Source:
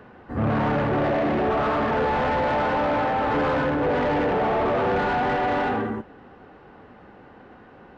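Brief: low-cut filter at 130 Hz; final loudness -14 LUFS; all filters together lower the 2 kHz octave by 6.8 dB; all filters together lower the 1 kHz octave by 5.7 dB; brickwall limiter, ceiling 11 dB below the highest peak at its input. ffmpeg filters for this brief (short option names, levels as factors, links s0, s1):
-af "highpass=130,equalizer=f=1000:t=o:g=-6.5,equalizer=f=2000:t=o:g=-6.5,volume=8.91,alimiter=limit=0.422:level=0:latency=1"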